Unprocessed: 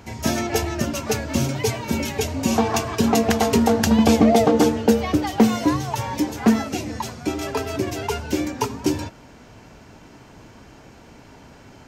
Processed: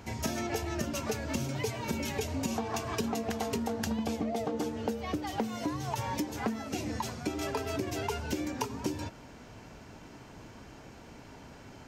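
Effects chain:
downward compressor 16 to 1, threshold −25 dBFS, peak gain reduction 16 dB
level −4 dB

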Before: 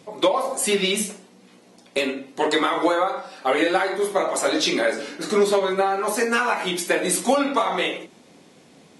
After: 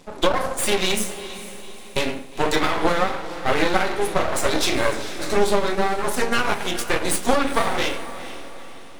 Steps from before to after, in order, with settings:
0:05.74–0:07.23: transient designer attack −2 dB, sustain −7 dB
half-wave rectification
feedback delay with all-pass diffusion 459 ms, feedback 46%, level −13 dB
level +4 dB

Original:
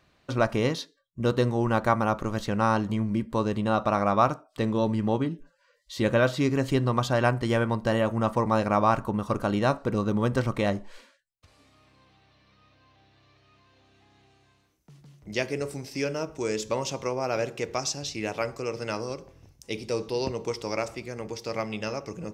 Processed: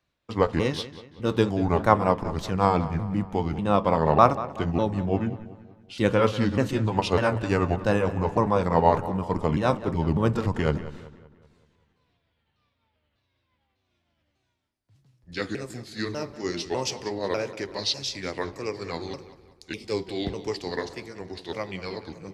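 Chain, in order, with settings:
pitch shifter swept by a sawtooth −5.5 semitones, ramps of 598 ms
feedback echo with a low-pass in the loop 189 ms, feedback 61%, low-pass 4,900 Hz, level −13 dB
multiband upward and downward expander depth 40%
level +2 dB

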